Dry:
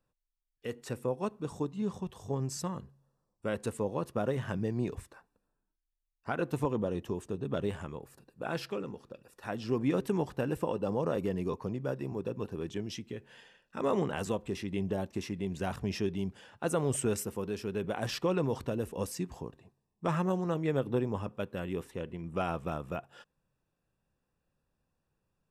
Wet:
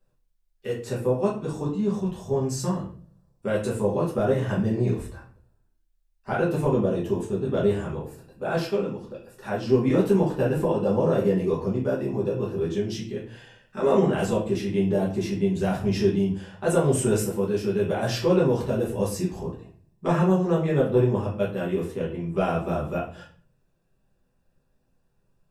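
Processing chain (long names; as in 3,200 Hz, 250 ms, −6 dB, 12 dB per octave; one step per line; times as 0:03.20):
rectangular room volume 37 cubic metres, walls mixed, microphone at 1.2 metres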